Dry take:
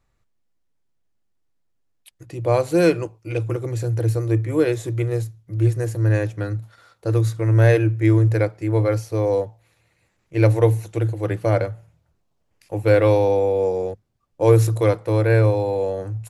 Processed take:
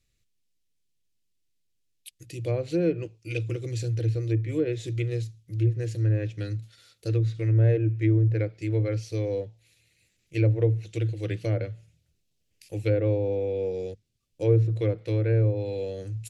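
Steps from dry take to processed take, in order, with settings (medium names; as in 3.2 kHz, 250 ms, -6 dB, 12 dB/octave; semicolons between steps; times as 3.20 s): low-pass that closes with the level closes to 1 kHz, closed at -12.5 dBFS; FFT filter 130 Hz 0 dB, 470 Hz -3 dB, 960 Hz -18 dB, 2.6 kHz +7 dB, 3.9 kHz +9 dB; trim -5 dB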